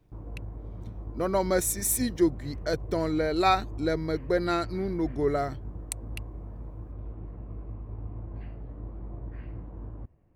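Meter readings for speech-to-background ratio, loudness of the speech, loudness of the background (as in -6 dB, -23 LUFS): 13.5 dB, -28.0 LUFS, -41.5 LUFS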